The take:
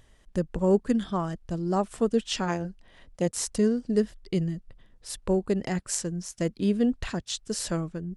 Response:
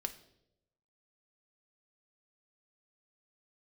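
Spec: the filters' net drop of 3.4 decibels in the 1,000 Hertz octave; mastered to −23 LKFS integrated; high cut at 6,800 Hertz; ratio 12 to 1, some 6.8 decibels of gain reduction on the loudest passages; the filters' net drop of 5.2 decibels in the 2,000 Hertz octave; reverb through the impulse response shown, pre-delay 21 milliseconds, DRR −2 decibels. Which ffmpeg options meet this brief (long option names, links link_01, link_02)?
-filter_complex "[0:a]lowpass=6800,equalizer=frequency=1000:width_type=o:gain=-3.5,equalizer=frequency=2000:width_type=o:gain=-5.5,acompressor=threshold=-24dB:ratio=12,asplit=2[link_01][link_02];[1:a]atrim=start_sample=2205,adelay=21[link_03];[link_02][link_03]afir=irnorm=-1:irlink=0,volume=2.5dB[link_04];[link_01][link_04]amix=inputs=2:normalize=0,volume=4.5dB"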